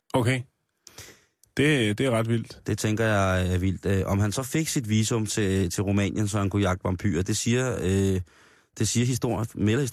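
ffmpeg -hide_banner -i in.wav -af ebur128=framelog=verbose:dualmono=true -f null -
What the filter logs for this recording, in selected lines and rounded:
Integrated loudness:
  I:         -22.3 LUFS
  Threshold: -32.8 LUFS
Loudness range:
  LRA:         1.3 LU
  Threshold: -42.5 LUFS
  LRA low:   -23.1 LUFS
  LRA high:  -21.8 LUFS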